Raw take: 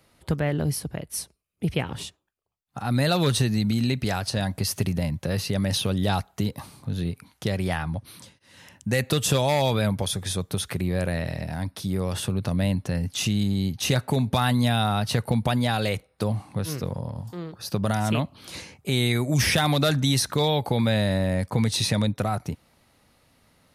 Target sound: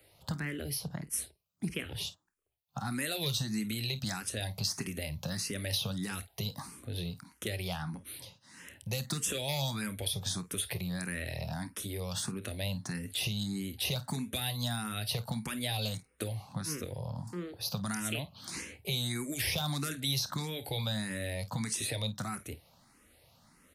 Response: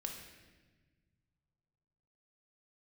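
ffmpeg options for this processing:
-filter_complex "[0:a]highshelf=f=6.7k:g=5.5,acrossover=split=260|1700|5200[a][b][c][d];[a]acompressor=threshold=-35dB:ratio=4[e];[b]acompressor=threshold=-40dB:ratio=4[f];[c]acompressor=threshold=-35dB:ratio=4[g];[d]acompressor=threshold=-33dB:ratio=4[h];[e][f][g][h]amix=inputs=4:normalize=0,asplit=2[i][j];[j]aecho=0:1:28|51:0.168|0.158[k];[i][k]amix=inputs=2:normalize=0,asplit=2[l][m];[m]afreqshift=1.6[n];[l][n]amix=inputs=2:normalize=1"

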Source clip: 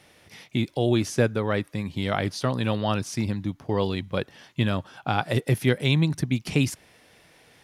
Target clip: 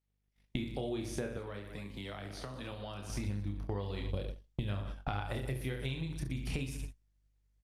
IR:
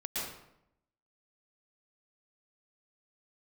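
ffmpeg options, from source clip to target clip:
-filter_complex "[0:a]aecho=1:1:30|69|119.7|185.6|271.3:0.631|0.398|0.251|0.158|0.1,aeval=exprs='val(0)+0.0141*(sin(2*PI*50*n/s)+sin(2*PI*2*50*n/s)/2+sin(2*PI*3*50*n/s)/3+sin(2*PI*4*50*n/s)/4+sin(2*PI*5*50*n/s)/5)':c=same,asplit=3[a][b][c];[a]afade=t=out:st=4.09:d=0.02[d];[b]equalizer=f=1.4k:w=0.95:g=-13,afade=t=in:st=4.09:d=0.02,afade=t=out:st=4.68:d=0.02[e];[c]afade=t=in:st=4.68:d=0.02[f];[d][e][f]amix=inputs=3:normalize=0,agate=range=-52dB:threshold=-32dB:ratio=16:detection=peak,acompressor=threshold=-38dB:ratio=10,asubboost=boost=5:cutoff=73,asettb=1/sr,asplit=3[g][h][i];[g]atrim=end=1.374[j];[h]atrim=start=1.37:end=3.1,asetpts=PTS-STARTPTS,afade=t=in:d=0.004:c=qsin,afade=t=out:st=1.726:d=0.004:c=qsin,acrossover=split=120|260|3200[k][l][m][n];[k]acompressor=threshold=-54dB:ratio=4[o];[l]acompressor=threshold=-54dB:ratio=4[p];[m]acompressor=threshold=-47dB:ratio=4[q];[n]acompressor=threshold=-52dB:ratio=4[r];[o][p][q][r]amix=inputs=4:normalize=0[s];[i]atrim=start=3.096[t];[j][s]acrossfade=d=0.004:c1=hsin:c2=qsin[u];[u][t]acrossfade=d=0.004:c1=qsin:c2=hsin,volume=4dB" -ar 48000 -c:a libopus -b:a 48k

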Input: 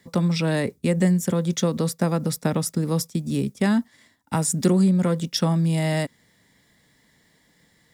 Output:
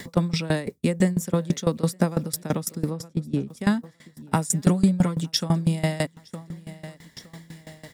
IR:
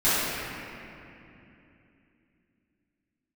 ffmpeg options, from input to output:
-filter_complex "[0:a]asplit=3[a][b][c];[a]afade=t=out:st=2.89:d=0.02[d];[b]lowpass=f=1.3k:p=1,afade=t=in:st=2.89:d=0.02,afade=t=out:st=3.47:d=0.02[e];[c]afade=t=in:st=3.47:d=0.02[f];[d][e][f]amix=inputs=3:normalize=0,asettb=1/sr,asplit=3[g][h][i];[g]atrim=end=4.524[j];[h]atrim=start=4.52:end=5.31,asetpts=PTS-STARTPTS,afade=t=in:d=0.004:c=qsin,afade=t=out:st=0.786:d=0.004:c=qsin,aecho=1:1:6.8:0.59,atrim=end_sample=34839[k];[i]atrim=start=5.306[l];[j][k]acrossfade=d=0.004:c1=hsin:c2=qsin[m];[m][l]acrossfade=d=0.004:c1=qsin:c2=hsin,aecho=1:1:913|1826:0.0794|0.0222,acompressor=mode=upward:threshold=-29dB:ratio=2.5,aeval=exprs='val(0)*pow(10,-20*if(lt(mod(6*n/s,1),2*abs(6)/1000),1-mod(6*n/s,1)/(2*abs(6)/1000),(mod(6*n/s,1)-2*abs(6)/1000)/(1-2*abs(6)/1000))/20)':c=same,volume=4.5dB"

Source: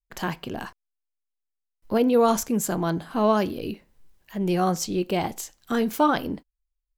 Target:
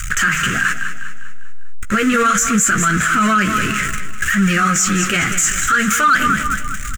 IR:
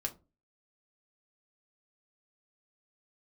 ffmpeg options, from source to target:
-filter_complex "[0:a]aeval=exprs='val(0)+0.5*0.0316*sgn(val(0))':c=same,firequalizer=gain_entry='entry(160,0);entry(330,-10);entry(910,-23);entry(1300,14);entry(4400,-9);entry(7000,11);entry(11000,-6)':delay=0.05:min_phase=1,flanger=delay=0.6:depth=7.5:regen=-38:speed=0.68:shape=triangular,equalizer=f=270:t=o:w=1.4:g=-3,asplit=2[a][b];[b]adelay=15,volume=-9dB[c];[a][c]amix=inputs=2:normalize=0,aecho=1:1:200|400|600|800|1000:0.237|0.109|0.0502|0.0231|0.0106,asplit=2[d][e];[e]aeval=exprs='0.355*sin(PI/2*1.58*val(0)/0.355)':c=same,volume=-6dB[f];[d][f]amix=inputs=2:normalize=0,alimiter=level_in=15.5dB:limit=-1dB:release=50:level=0:latency=1,volume=-6dB"

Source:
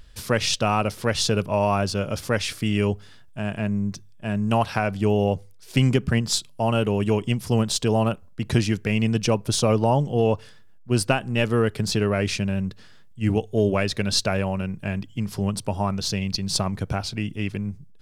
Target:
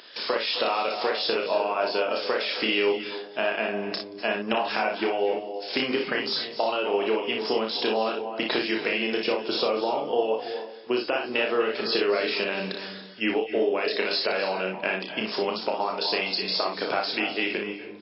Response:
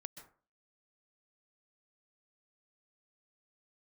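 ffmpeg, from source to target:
-filter_complex "[0:a]deesser=0.8,highpass=f=340:w=0.5412,highpass=f=340:w=1.3066,highshelf=f=3.9k:g=7,alimiter=limit=-14.5dB:level=0:latency=1:release=79,acompressor=threshold=-33dB:ratio=12,aecho=1:1:32|59:0.596|0.531,asplit=2[a][b];[1:a]atrim=start_sample=2205,asetrate=22050,aresample=44100[c];[b][c]afir=irnorm=-1:irlink=0,volume=7dB[d];[a][d]amix=inputs=2:normalize=0,volume=1dB" -ar 12000 -c:a libmp3lame -b:a 24k

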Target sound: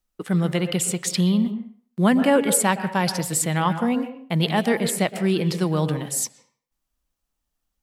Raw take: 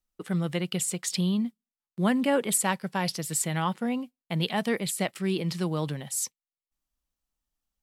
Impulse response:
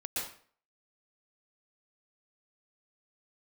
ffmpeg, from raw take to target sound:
-filter_complex "[0:a]asplit=2[a][b];[1:a]atrim=start_sample=2205,lowpass=2.3k[c];[b][c]afir=irnorm=-1:irlink=0,volume=-9.5dB[d];[a][d]amix=inputs=2:normalize=0,volume=5dB"

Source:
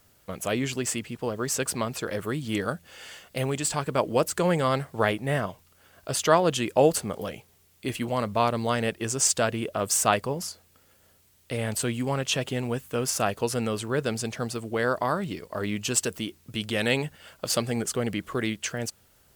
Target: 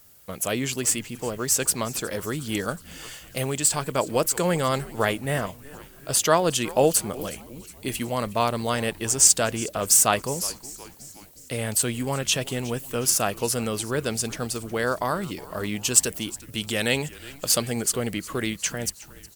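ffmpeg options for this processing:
-filter_complex "[0:a]highshelf=f=5.8k:g=11.5,asplit=6[a][b][c][d][e][f];[b]adelay=364,afreqshift=-140,volume=-19dB[g];[c]adelay=728,afreqshift=-280,volume=-23.6dB[h];[d]adelay=1092,afreqshift=-420,volume=-28.2dB[i];[e]adelay=1456,afreqshift=-560,volume=-32.7dB[j];[f]adelay=1820,afreqshift=-700,volume=-37.3dB[k];[a][g][h][i][j][k]amix=inputs=6:normalize=0"

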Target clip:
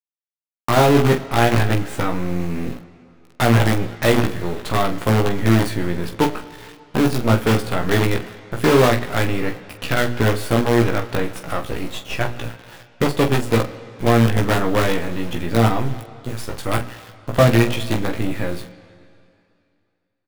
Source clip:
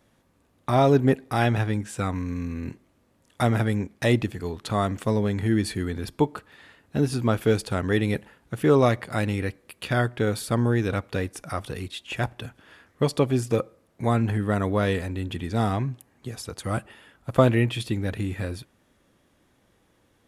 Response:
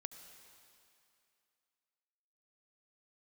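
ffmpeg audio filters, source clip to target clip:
-filter_complex "[0:a]bandreject=f=60:t=h:w=6,bandreject=f=120:t=h:w=6,bandreject=f=180:t=h:w=6,bandreject=f=240:t=h:w=6,bandreject=f=300:t=h:w=6,bandreject=f=360:t=h:w=6,bandreject=f=420:t=h:w=6,asplit=2[a][b];[b]acompressor=threshold=-30dB:ratio=5,volume=-1dB[c];[a][c]amix=inputs=2:normalize=0,acrusher=bits=4:dc=4:mix=0:aa=0.000001,asoftclip=type=tanh:threshold=-12dB,aecho=1:1:17|45:0.668|0.335,asplit=2[d][e];[1:a]atrim=start_sample=2205,lowpass=4.5k[f];[e][f]afir=irnorm=-1:irlink=0,volume=1dB[g];[d][g]amix=inputs=2:normalize=0"

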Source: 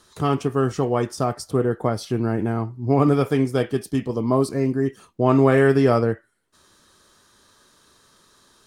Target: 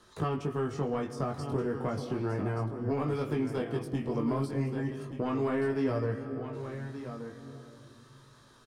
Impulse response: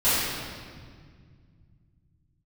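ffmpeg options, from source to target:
-filter_complex "[0:a]asplit=2[a][b];[1:a]atrim=start_sample=2205,adelay=87[c];[b][c]afir=irnorm=-1:irlink=0,volume=-33.5dB[d];[a][d]amix=inputs=2:normalize=0,acrossover=split=220|1800[e][f][g];[e]acompressor=threshold=-32dB:ratio=4[h];[f]acompressor=threshold=-30dB:ratio=4[i];[g]acompressor=threshold=-43dB:ratio=4[j];[h][i][j]amix=inputs=3:normalize=0,asplit=2[k][l];[l]aeval=exprs='0.188*sin(PI/2*1.78*val(0)/0.188)':c=same,volume=-3.5dB[m];[k][m]amix=inputs=2:normalize=0,highshelf=f=4.2k:g=-10,aecho=1:1:1178:0.316,flanger=delay=19:depth=2.3:speed=0.34,volume=-7dB"

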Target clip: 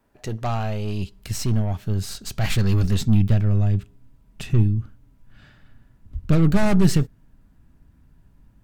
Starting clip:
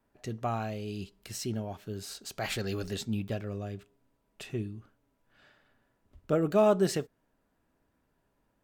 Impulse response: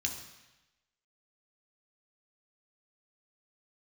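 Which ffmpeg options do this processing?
-af "aeval=exprs='0.188*sin(PI/2*1.78*val(0)/0.188)':c=same,aeval=exprs='0.188*(cos(1*acos(clip(val(0)/0.188,-1,1)))-cos(1*PI/2))+0.00944*(cos(5*acos(clip(val(0)/0.188,-1,1)))-cos(5*PI/2))+0.0188*(cos(6*acos(clip(val(0)/0.188,-1,1)))-cos(6*PI/2))':c=same,asubboost=boost=9.5:cutoff=160,volume=-3dB"

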